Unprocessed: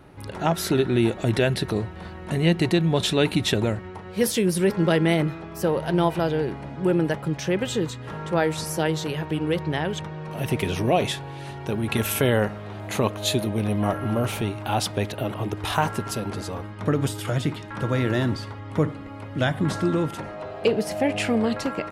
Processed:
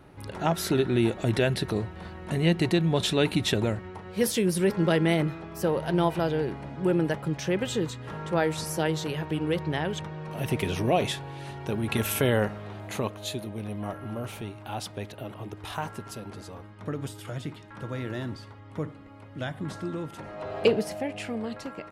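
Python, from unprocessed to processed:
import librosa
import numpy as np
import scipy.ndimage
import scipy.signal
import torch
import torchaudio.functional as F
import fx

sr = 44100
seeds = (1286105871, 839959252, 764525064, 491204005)

y = fx.gain(x, sr, db=fx.line((12.66, -3.0), (13.34, -10.5), (20.08, -10.5), (20.58, 2.0), (21.11, -10.5)))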